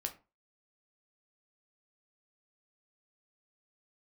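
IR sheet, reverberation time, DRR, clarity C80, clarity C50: 0.30 s, 4.5 dB, 20.5 dB, 14.5 dB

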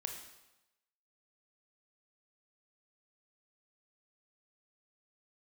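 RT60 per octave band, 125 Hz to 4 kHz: 1.0 s, 0.90 s, 0.95 s, 1.0 s, 0.95 s, 0.90 s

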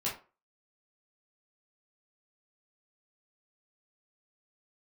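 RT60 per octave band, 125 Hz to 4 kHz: 0.25 s, 0.30 s, 0.35 s, 0.35 s, 0.25 s, 0.20 s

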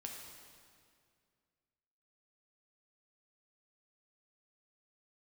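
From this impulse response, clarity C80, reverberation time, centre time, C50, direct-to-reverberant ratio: 3.5 dB, 2.2 s, 76 ms, 2.0 dB, 0.0 dB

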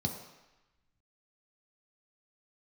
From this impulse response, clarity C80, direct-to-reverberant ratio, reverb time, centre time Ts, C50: 8.5 dB, 2.0 dB, 1.0 s, 28 ms, 6.5 dB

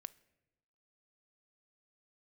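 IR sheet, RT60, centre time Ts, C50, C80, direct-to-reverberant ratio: 1.0 s, 2 ms, 20.5 dB, 23.5 dB, 17.5 dB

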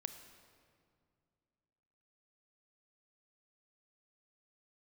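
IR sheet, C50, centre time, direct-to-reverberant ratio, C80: 9.0 dB, 23 ms, 8.5 dB, 10.0 dB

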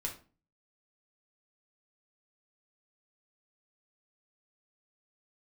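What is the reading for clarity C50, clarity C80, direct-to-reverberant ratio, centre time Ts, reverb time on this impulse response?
10.0 dB, 15.5 dB, -1.0 dB, 16 ms, 0.35 s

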